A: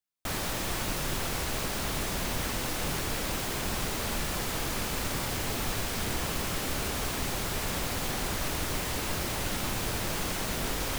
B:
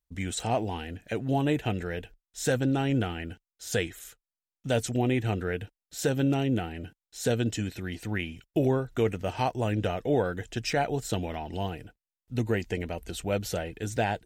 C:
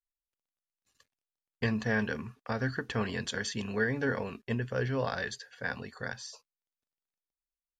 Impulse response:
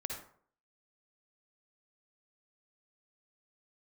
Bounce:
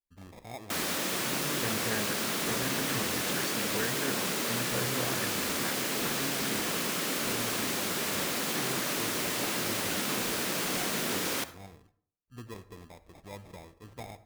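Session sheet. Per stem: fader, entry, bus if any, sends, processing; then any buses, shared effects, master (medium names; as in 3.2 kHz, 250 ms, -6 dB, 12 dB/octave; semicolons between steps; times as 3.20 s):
0.0 dB, 0.45 s, send -8.5 dB, high-pass 180 Hz 24 dB/octave; peaking EQ 810 Hz -5 dB 0.7 oct
-18.0 dB, 0.00 s, send -10 dB, sample-and-hold 30×
-6.0 dB, 0.00 s, no send, none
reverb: on, RT60 0.55 s, pre-delay 47 ms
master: none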